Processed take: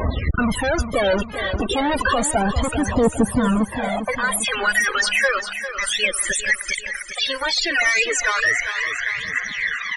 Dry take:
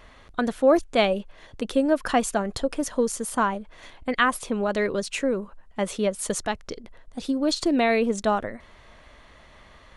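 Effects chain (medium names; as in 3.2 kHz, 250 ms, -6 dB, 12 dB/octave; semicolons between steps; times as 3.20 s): high-pass sweep 70 Hz -> 1.8 kHz, 3.19–4.30 s; dynamic bell 4.1 kHz, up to -4 dB, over -46 dBFS, Q 5.2; in parallel at -2 dB: compression 6:1, threshold -33 dBFS, peak gain reduction 21 dB; on the sum: peak limiter -14 dBFS, peak gain reduction 11 dB; fuzz box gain 48 dB, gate -46 dBFS; phaser 0.32 Hz, delay 2.8 ms, feedback 58%; loudest bins only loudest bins 32; 2.38–4.31 s: treble shelf 2.6 kHz -11.5 dB; on a send: feedback delay 400 ms, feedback 51%, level -10.5 dB; on the sum: trim -5 dB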